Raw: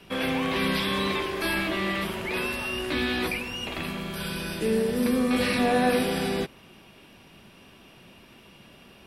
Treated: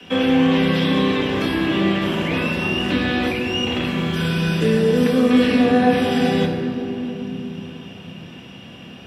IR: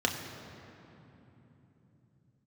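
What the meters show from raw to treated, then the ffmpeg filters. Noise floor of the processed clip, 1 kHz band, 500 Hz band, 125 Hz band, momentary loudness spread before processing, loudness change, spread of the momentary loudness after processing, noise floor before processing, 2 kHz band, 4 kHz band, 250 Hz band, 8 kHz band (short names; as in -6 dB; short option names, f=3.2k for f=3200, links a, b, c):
-39 dBFS, +5.5 dB, +8.0 dB, +12.5 dB, 9 LU, +7.5 dB, 20 LU, -53 dBFS, +4.5 dB, +6.0 dB, +10.5 dB, -1.0 dB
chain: -filter_complex "[0:a]acrossover=split=250|680[a][b][c];[a]acompressor=threshold=-37dB:ratio=4[d];[b]acompressor=threshold=-31dB:ratio=4[e];[c]acompressor=threshold=-34dB:ratio=4[f];[d][e][f]amix=inputs=3:normalize=0[g];[1:a]atrim=start_sample=2205[h];[g][h]afir=irnorm=-1:irlink=0"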